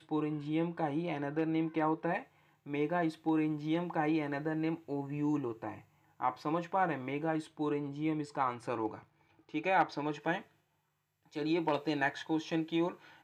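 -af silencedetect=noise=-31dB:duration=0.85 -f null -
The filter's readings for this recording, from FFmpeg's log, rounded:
silence_start: 10.37
silence_end: 11.36 | silence_duration: 0.99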